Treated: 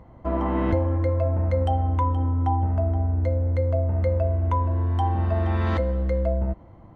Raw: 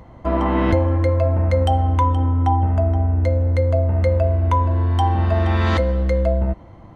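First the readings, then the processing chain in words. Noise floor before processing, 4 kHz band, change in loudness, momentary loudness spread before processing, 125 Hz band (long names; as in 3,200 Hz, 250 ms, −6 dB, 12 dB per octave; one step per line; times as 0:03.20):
−42 dBFS, −12.0 dB, −5.5 dB, 2 LU, −5.0 dB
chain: high-shelf EQ 2,600 Hz −11 dB
level −5 dB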